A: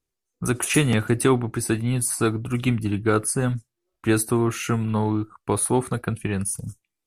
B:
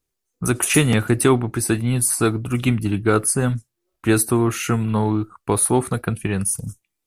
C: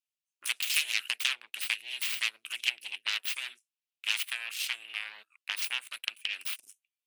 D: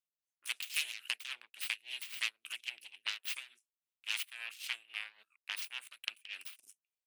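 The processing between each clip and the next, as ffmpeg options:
-af "highshelf=f=11000:g=6,volume=1.41"
-af "aeval=exprs='0.708*(cos(1*acos(clip(val(0)/0.708,-1,1)))-cos(1*PI/2))+0.282*(cos(3*acos(clip(val(0)/0.708,-1,1)))-cos(3*PI/2))+0.00398*(cos(5*acos(clip(val(0)/0.708,-1,1)))-cos(5*PI/2))+0.178*(cos(6*acos(clip(val(0)/0.708,-1,1)))-cos(6*PI/2))+0.224*(cos(8*acos(clip(val(0)/0.708,-1,1)))-cos(8*PI/2))':c=same,acompressor=threshold=0.0398:ratio=3,highpass=f=2700:t=q:w=3.4"
-af "tremolo=f=3.6:d=0.82,volume=0.631"

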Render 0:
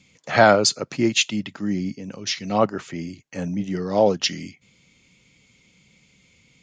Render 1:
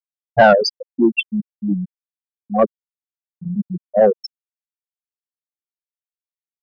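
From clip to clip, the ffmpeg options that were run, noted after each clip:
-af "afftfilt=real='re*gte(hypot(re,im),0.562)':imag='im*gte(hypot(re,im),0.562)':win_size=1024:overlap=0.75,acontrast=80"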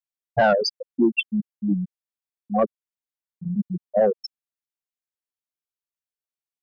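-af "alimiter=limit=0.398:level=0:latency=1:release=265,volume=0.75"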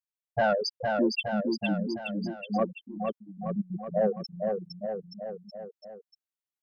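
-af "aecho=1:1:460|874|1247|1582|1884:0.631|0.398|0.251|0.158|0.1,volume=0.447"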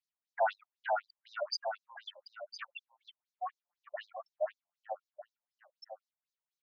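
-filter_complex "[0:a]acrossover=split=250|2100[s0][s1][s2];[s1]asoftclip=type=tanh:threshold=0.0447[s3];[s0][s3][s2]amix=inputs=3:normalize=0,afftfilt=real='re*between(b*sr/1024,750*pow(5400/750,0.5+0.5*sin(2*PI*4*pts/sr))/1.41,750*pow(5400/750,0.5+0.5*sin(2*PI*4*pts/sr))*1.41)':imag='im*between(b*sr/1024,750*pow(5400/750,0.5+0.5*sin(2*PI*4*pts/sr))/1.41,750*pow(5400/750,0.5+0.5*sin(2*PI*4*pts/sr))*1.41)':win_size=1024:overlap=0.75,volume=1.68"

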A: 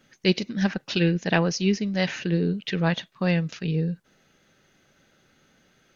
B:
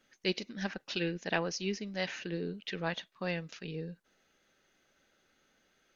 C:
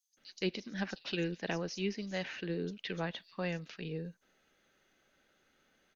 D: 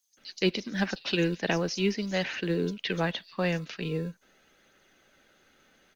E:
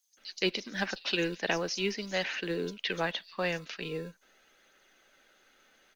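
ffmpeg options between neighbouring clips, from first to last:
-af "equalizer=f=130:t=o:w=1.5:g=-11,volume=0.398"
-filter_complex "[0:a]acrossover=split=5700[s0][s1];[s0]adelay=170[s2];[s2][s1]amix=inputs=2:normalize=0,acrossover=split=430[s3][s4];[s4]acompressor=threshold=0.0178:ratio=10[s5];[s3][s5]amix=inputs=2:normalize=0"
-filter_complex "[0:a]acrossover=split=120|1600[s0][s1][s2];[s0]acrusher=samples=37:mix=1:aa=0.000001[s3];[s2]aphaser=in_gain=1:out_gain=1:delay=4.3:decay=0.33:speed=0.42:type=triangular[s4];[s3][s1][s4]amix=inputs=3:normalize=0,volume=2.66"
-af "equalizer=f=98:w=0.42:g=-12.5"

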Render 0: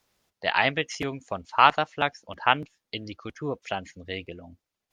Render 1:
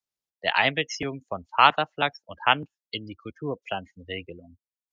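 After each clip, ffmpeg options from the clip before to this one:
-filter_complex "[0:a]afftdn=nr=26:nf=-35,acrossover=split=160|410|3400[s0][s1][s2][s3];[s3]acontrast=84[s4];[s0][s1][s2][s4]amix=inputs=4:normalize=0"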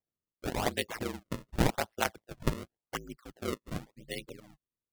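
-filter_complex "[0:a]asplit=2[s0][s1];[s1]alimiter=limit=0.237:level=0:latency=1:release=237,volume=1[s2];[s0][s2]amix=inputs=2:normalize=0,aeval=exprs='val(0)*sin(2*PI*56*n/s)':c=same,acrusher=samples=32:mix=1:aa=0.000001:lfo=1:lforange=51.2:lforate=0.9,volume=0.376"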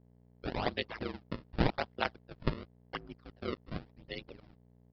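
-af "aeval=exprs='val(0)+0.00282*(sin(2*PI*60*n/s)+sin(2*PI*2*60*n/s)/2+sin(2*PI*3*60*n/s)/3+sin(2*PI*4*60*n/s)/4+sin(2*PI*5*60*n/s)/5)':c=same,aresample=11025,aeval=exprs='sgn(val(0))*max(abs(val(0))-0.002,0)':c=same,aresample=44100,volume=0.794"

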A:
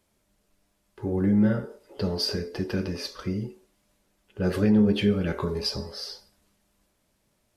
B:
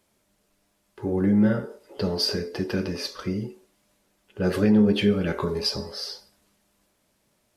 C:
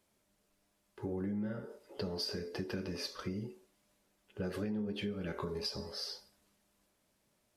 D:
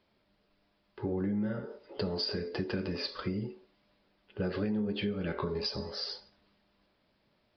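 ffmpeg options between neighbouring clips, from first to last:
-af "lowshelf=f=89:g=-9.5,volume=1.41"
-af "acompressor=threshold=0.0398:ratio=6,volume=0.447"
-af "aresample=11025,aresample=44100,volume=1.78"

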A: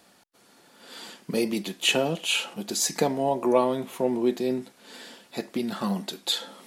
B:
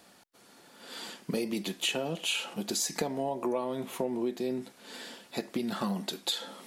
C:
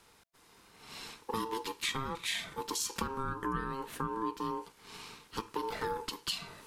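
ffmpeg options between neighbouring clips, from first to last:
-af "acompressor=threshold=0.0398:ratio=6"
-af "aeval=exprs='val(0)*sin(2*PI*670*n/s)':c=same,volume=0.891"

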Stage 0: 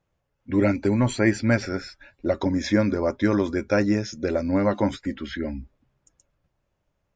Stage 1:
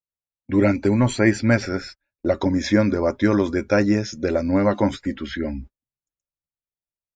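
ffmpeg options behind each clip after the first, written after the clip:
-af "agate=range=0.0224:threshold=0.01:ratio=16:detection=peak,volume=1.41"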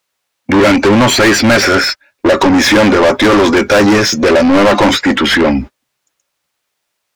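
-filter_complex "[0:a]asplit=2[s0][s1];[s1]highpass=f=720:p=1,volume=56.2,asoftclip=type=tanh:threshold=0.708[s2];[s0][s2]amix=inputs=2:normalize=0,lowpass=f=4100:p=1,volume=0.501,volume=1.26"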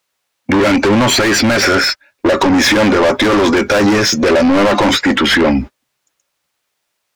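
-af "alimiter=limit=0.447:level=0:latency=1:release=83"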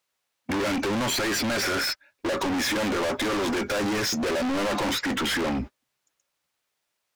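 -af "asoftclip=type=hard:threshold=0.15,volume=0.376"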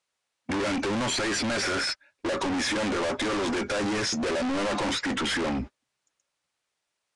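-af "aresample=22050,aresample=44100,volume=0.841"

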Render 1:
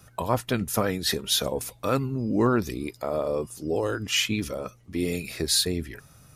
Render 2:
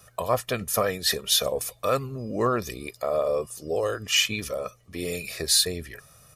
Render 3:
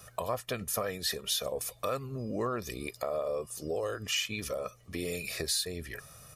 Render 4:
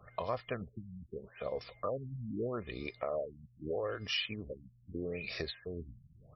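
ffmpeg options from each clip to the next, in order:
-af "bass=f=250:g=-7,treble=f=4000:g=2,aecho=1:1:1.7:0.54"
-af "acompressor=threshold=0.0158:ratio=2.5,volume=1.19"
-af "aeval=exprs='val(0)+0.000891*sin(2*PI*2100*n/s)':c=same,afftfilt=real='re*lt(b*sr/1024,230*pow(5900/230,0.5+0.5*sin(2*PI*0.79*pts/sr)))':imag='im*lt(b*sr/1024,230*pow(5900/230,0.5+0.5*sin(2*PI*0.79*pts/sr)))':win_size=1024:overlap=0.75,volume=0.75"

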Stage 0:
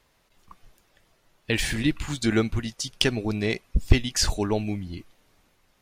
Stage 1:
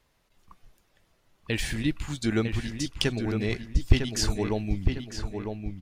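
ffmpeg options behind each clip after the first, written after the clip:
-filter_complex "[0:a]lowshelf=f=220:g=4,asplit=2[s0][s1];[s1]adelay=953,lowpass=f=2800:p=1,volume=0.531,asplit=2[s2][s3];[s3]adelay=953,lowpass=f=2800:p=1,volume=0.44,asplit=2[s4][s5];[s5]adelay=953,lowpass=f=2800:p=1,volume=0.44,asplit=2[s6][s7];[s7]adelay=953,lowpass=f=2800:p=1,volume=0.44,asplit=2[s8][s9];[s9]adelay=953,lowpass=f=2800:p=1,volume=0.44[s10];[s0][s2][s4][s6][s8][s10]amix=inputs=6:normalize=0,volume=0.562"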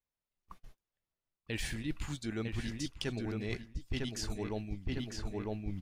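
-af "agate=range=0.0398:threshold=0.00251:ratio=16:detection=peak,areverse,acompressor=threshold=0.02:ratio=12,areverse,volume=1.12"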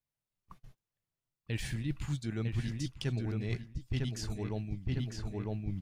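-af "equalizer=f=130:t=o:w=0.88:g=11.5,volume=0.75"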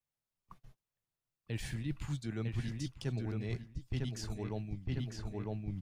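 -filter_complex "[0:a]acrossover=split=100|1100|4000[s0][s1][s2][s3];[s1]crystalizer=i=9:c=0[s4];[s2]alimiter=level_in=4.22:limit=0.0631:level=0:latency=1:release=142,volume=0.237[s5];[s0][s4][s5][s3]amix=inputs=4:normalize=0,volume=0.708"

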